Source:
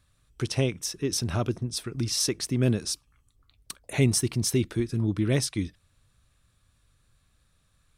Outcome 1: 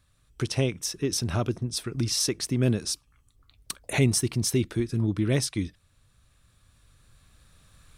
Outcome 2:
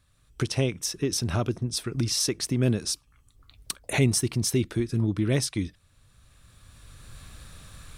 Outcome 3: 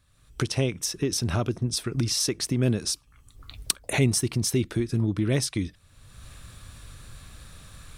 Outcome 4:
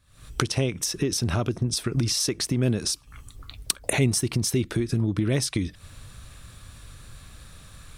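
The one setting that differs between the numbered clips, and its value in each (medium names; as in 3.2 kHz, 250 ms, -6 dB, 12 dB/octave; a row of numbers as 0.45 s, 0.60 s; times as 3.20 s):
recorder AGC, rising by: 5 dB/s, 13 dB/s, 31 dB/s, 84 dB/s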